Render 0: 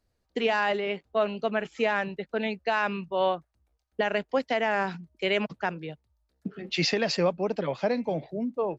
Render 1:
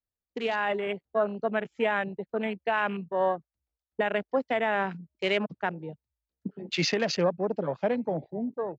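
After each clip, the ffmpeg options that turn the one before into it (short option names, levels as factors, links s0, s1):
-af "afwtdn=0.0178,dynaudnorm=f=400:g=3:m=1.78,volume=0.531"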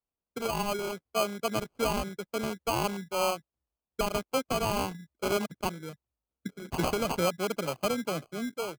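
-af "acrusher=samples=24:mix=1:aa=0.000001,volume=0.75"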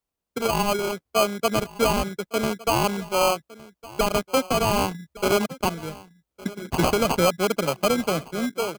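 -af "aecho=1:1:1161:0.112,aeval=exprs='0.15*(cos(1*acos(clip(val(0)/0.15,-1,1)))-cos(1*PI/2))+0.0237*(cos(5*acos(clip(val(0)/0.15,-1,1)))-cos(5*PI/2))+0.0168*(cos(7*acos(clip(val(0)/0.15,-1,1)))-cos(7*PI/2))':c=same,volume=2.11"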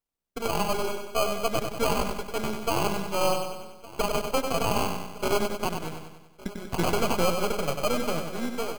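-filter_complex "[0:a]aeval=exprs='if(lt(val(0),0),0.251*val(0),val(0))':c=same,asplit=2[s0][s1];[s1]aecho=0:1:96|192|288|384|480|576|672:0.501|0.271|0.146|0.0789|0.0426|0.023|0.0124[s2];[s0][s2]amix=inputs=2:normalize=0,volume=0.794"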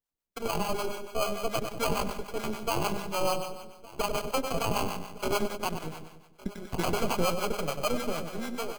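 -filter_complex "[0:a]acrossover=split=570[s0][s1];[s0]aeval=exprs='val(0)*(1-0.7/2+0.7/2*cos(2*PI*6.8*n/s))':c=same[s2];[s1]aeval=exprs='val(0)*(1-0.7/2-0.7/2*cos(2*PI*6.8*n/s))':c=same[s3];[s2][s3]amix=inputs=2:normalize=0"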